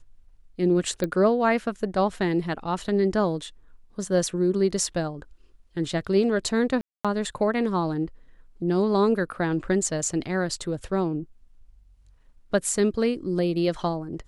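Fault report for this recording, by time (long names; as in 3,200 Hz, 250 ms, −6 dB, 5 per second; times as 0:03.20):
0:01.04: click −14 dBFS
0:06.81–0:07.05: drop-out 236 ms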